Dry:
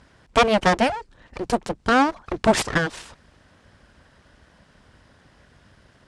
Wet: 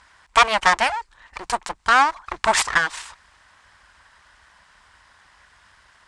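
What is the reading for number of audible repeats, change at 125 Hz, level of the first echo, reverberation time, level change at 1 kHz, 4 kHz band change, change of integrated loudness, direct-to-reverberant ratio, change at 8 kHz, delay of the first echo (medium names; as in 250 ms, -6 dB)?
no echo, -13.0 dB, no echo, no reverb, +3.5 dB, +3.5 dB, +1.5 dB, no reverb, +5.5 dB, no echo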